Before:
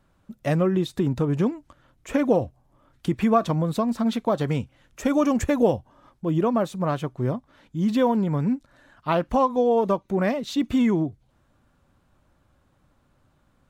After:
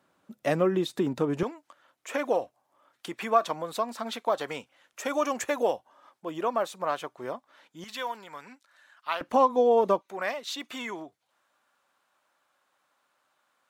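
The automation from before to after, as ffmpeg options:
ffmpeg -i in.wav -af "asetnsamples=nb_out_samples=441:pad=0,asendcmd='1.43 highpass f 620;7.84 highpass f 1300;9.21 highpass f 320;10.01 highpass f 850',highpass=280" out.wav

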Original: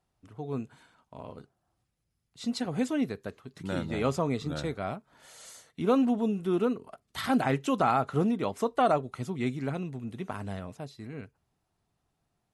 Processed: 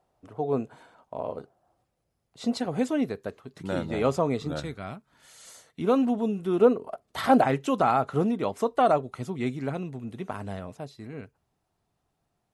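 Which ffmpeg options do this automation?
ffmpeg -i in.wav -af "asetnsamples=nb_out_samples=441:pad=0,asendcmd='2.57 equalizer g 5.5;4.6 equalizer g -6;5.47 equalizer g 2.5;6.6 equalizer g 12.5;7.44 equalizer g 3.5',equalizer=frequency=600:width_type=o:width=1.8:gain=13.5" out.wav

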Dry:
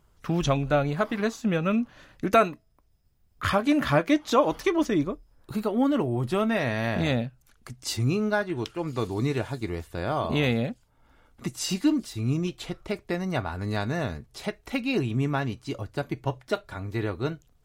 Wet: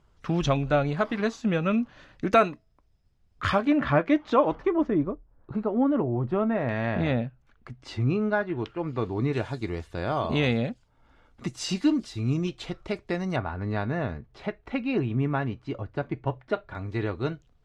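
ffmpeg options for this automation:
ffmpeg -i in.wav -af "asetnsamples=nb_out_samples=441:pad=0,asendcmd='3.65 lowpass f 2400;4.55 lowpass f 1300;6.69 lowpass f 2400;9.33 lowpass f 6000;13.36 lowpass f 2300;16.75 lowpass f 4500',lowpass=5600" out.wav

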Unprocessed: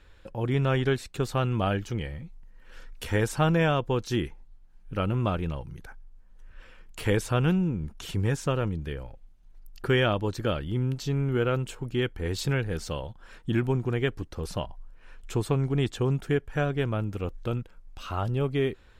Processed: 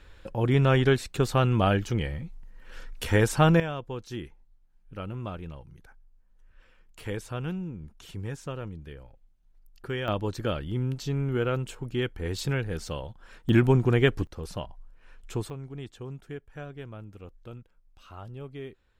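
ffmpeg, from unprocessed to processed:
ffmpeg -i in.wav -af "asetnsamples=nb_out_samples=441:pad=0,asendcmd='3.6 volume volume -9dB;10.08 volume volume -1.5dB;13.49 volume volume 5.5dB;14.27 volume volume -3.5dB;15.5 volume volume -13.5dB',volume=3.5dB" out.wav

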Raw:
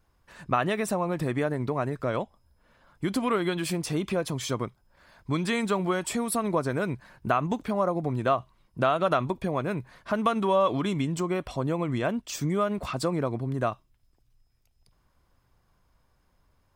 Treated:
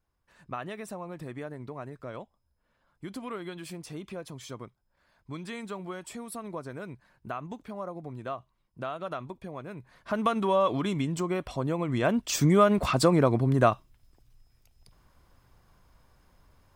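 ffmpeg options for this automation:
ffmpeg -i in.wav -af "volume=6dB,afade=type=in:start_time=9.75:duration=0.46:silence=0.316228,afade=type=in:start_time=11.88:duration=0.47:silence=0.421697" out.wav

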